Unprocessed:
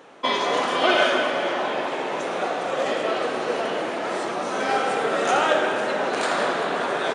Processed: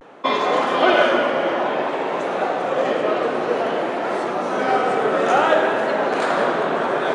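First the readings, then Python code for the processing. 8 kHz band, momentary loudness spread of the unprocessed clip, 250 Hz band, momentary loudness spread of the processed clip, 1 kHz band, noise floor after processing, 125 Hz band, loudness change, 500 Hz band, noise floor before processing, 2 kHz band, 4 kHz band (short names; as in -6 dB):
n/a, 7 LU, +5.0 dB, 7 LU, +4.0 dB, -24 dBFS, +5.0 dB, +3.5 dB, +4.5 dB, -28 dBFS, +1.5 dB, -2.0 dB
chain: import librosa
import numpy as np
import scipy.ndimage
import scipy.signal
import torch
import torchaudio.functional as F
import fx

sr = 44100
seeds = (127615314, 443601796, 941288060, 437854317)

y = fx.high_shelf(x, sr, hz=2900.0, db=-12.0)
y = fx.vibrato(y, sr, rate_hz=0.56, depth_cents=65.0)
y = y * librosa.db_to_amplitude(5.0)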